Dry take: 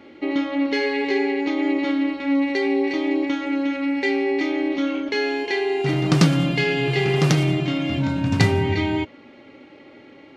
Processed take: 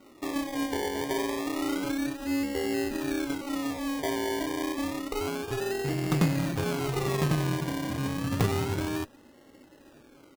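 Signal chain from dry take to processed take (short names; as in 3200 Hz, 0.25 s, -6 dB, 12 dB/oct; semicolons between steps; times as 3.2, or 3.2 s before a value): added harmonics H 6 -26 dB, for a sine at -2 dBFS; downsampling 8000 Hz; decimation with a swept rate 26×, swing 60% 0.29 Hz; gain -8.5 dB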